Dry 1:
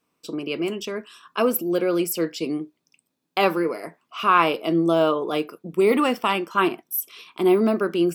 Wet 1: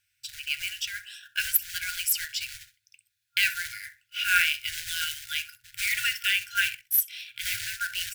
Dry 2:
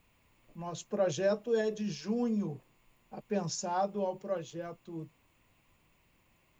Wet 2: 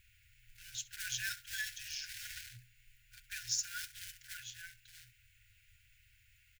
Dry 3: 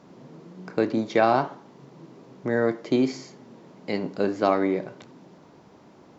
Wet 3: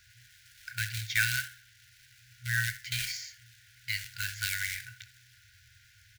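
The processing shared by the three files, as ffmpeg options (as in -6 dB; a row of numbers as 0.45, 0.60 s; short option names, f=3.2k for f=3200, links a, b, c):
-filter_complex "[0:a]asplit=2[a][b];[b]adelay=65,lowpass=f=2.8k:p=1,volume=-14.5dB,asplit=2[c][d];[d]adelay=65,lowpass=f=2.8k:p=1,volume=0.21[e];[a][c][e]amix=inputs=3:normalize=0,acrusher=bits=4:mode=log:mix=0:aa=0.000001,afftfilt=real='re*(1-between(b*sr/4096,120,1400))':imag='im*(1-between(b*sr/4096,120,1400))':win_size=4096:overlap=0.75,volume=3.5dB"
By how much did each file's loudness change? -4.5, -6.5, -7.5 LU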